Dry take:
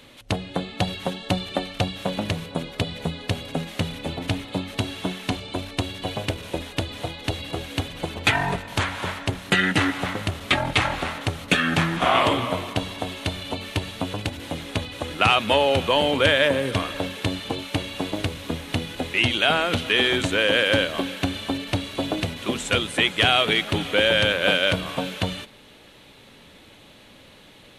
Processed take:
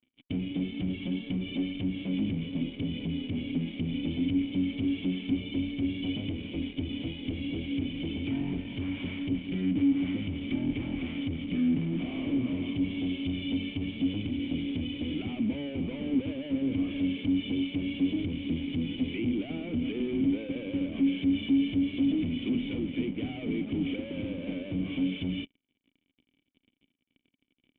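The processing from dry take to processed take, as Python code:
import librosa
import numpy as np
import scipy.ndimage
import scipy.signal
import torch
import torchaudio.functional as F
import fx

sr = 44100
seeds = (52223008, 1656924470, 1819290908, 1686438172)

y = fx.env_lowpass_down(x, sr, base_hz=970.0, full_db=-19.0)
y = fx.fuzz(y, sr, gain_db=37.0, gate_db=-41.0)
y = fx.formant_cascade(y, sr, vowel='i')
y = y * librosa.db_to_amplitude(-6.0)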